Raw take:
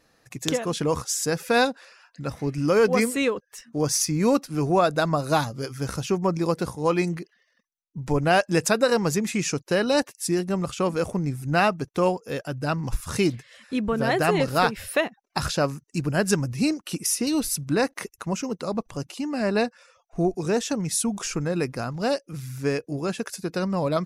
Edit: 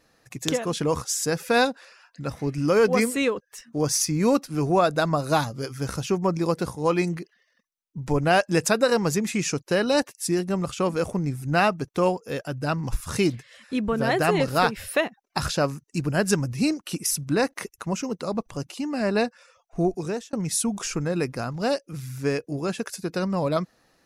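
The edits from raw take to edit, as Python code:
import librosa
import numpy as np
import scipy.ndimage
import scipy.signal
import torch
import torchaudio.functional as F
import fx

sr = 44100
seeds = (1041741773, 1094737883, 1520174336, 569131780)

y = fx.edit(x, sr, fx.cut(start_s=17.11, length_s=0.4),
    fx.fade_out_span(start_s=20.35, length_s=0.38), tone=tone)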